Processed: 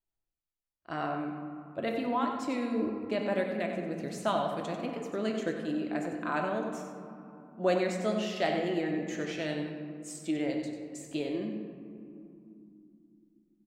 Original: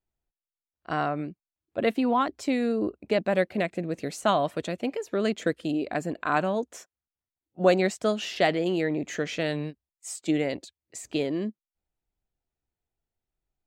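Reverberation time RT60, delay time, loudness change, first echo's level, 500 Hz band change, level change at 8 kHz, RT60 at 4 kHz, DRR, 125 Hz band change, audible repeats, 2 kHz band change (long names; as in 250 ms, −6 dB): 2.8 s, 94 ms, −5.5 dB, −8.5 dB, −5.5 dB, −6.5 dB, 1.1 s, 1.0 dB, −5.5 dB, 1, −6.0 dB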